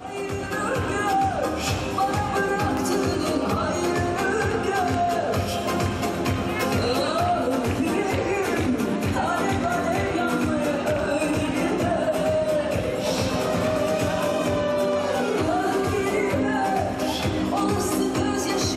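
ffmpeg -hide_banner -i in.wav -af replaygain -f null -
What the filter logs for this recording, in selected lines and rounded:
track_gain = +6.8 dB
track_peak = 0.181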